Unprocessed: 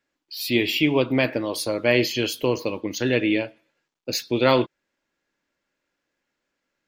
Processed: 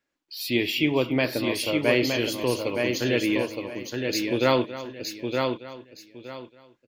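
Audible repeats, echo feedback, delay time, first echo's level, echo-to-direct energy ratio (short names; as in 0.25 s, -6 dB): 6, no steady repeat, 0.277 s, -15.0 dB, -4.0 dB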